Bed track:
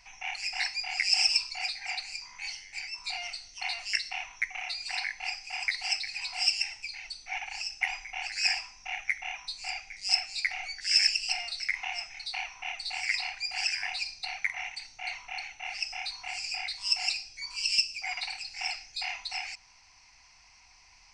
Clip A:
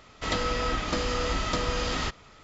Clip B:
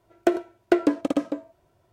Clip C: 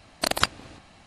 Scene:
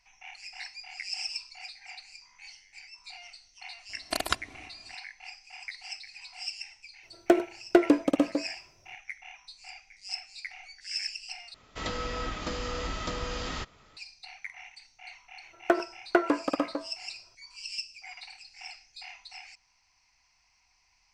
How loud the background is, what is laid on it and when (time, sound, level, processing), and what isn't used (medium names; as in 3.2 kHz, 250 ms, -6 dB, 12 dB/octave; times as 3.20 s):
bed track -10.5 dB
3.89 s: add C -7 dB + comb 2.9 ms, depth 52%
7.03 s: add B -0.5 dB
11.54 s: replace with A -6 dB
15.43 s: add B -8.5 dB + peaking EQ 1.2 kHz +14.5 dB 1.7 oct